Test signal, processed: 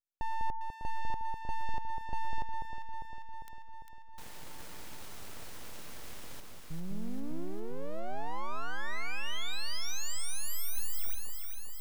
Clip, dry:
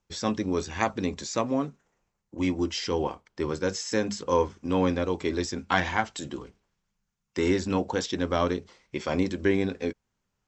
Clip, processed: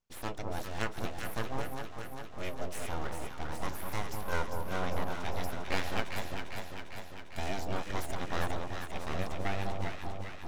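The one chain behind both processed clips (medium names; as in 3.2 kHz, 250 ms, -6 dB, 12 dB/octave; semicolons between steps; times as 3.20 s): dynamic bell 230 Hz, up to -4 dB, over -38 dBFS, Q 2.1; full-wave rectifier; on a send: echo whose repeats swap between lows and highs 200 ms, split 1.1 kHz, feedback 81%, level -3.5 dB; on the sum: trim -7 dB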